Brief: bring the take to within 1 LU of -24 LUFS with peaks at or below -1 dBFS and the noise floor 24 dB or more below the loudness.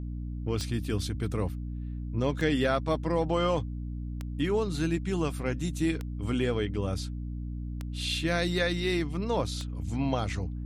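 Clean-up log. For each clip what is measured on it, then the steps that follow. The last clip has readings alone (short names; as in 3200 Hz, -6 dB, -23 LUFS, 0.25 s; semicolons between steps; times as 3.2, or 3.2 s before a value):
clicks 6; hum 60 Hz; harmonics up to 300 Hz; hum level -33 dBFS; loudness -30.5 LUFS; peak -12.5 dBFS; loudness target -24.0 LUFS
-> de-click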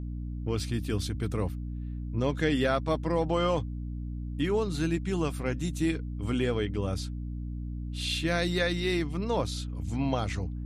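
clicks 0; hum 60 Hz; harmonics up to 300 Hz; hum level -33 dBFS
-> notches 60/120/180/240/300 Hz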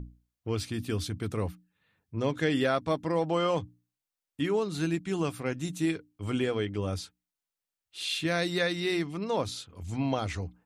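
hum none; loudness -31.0 LUFS; peak -13.5 dBFS; loudness target -24.0 LUFS
-> gain +7 dB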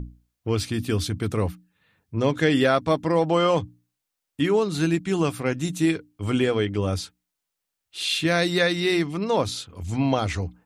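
loudness -24.0 LUFS; peak -6.5 dBFS; noise floor -83 dBFS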